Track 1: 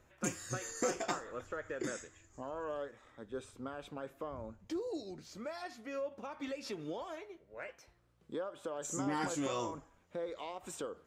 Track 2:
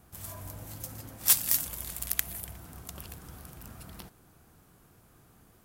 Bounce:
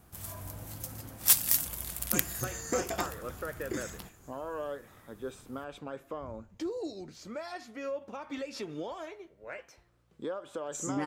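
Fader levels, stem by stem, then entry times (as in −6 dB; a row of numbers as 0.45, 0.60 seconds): +3.0, 0.0 decibels; 1.90, 0.00 seconds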